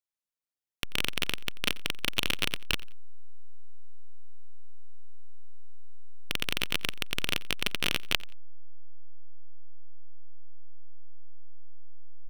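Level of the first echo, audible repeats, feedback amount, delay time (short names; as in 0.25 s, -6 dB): -21.0 dB, 2, 25%, 88 ms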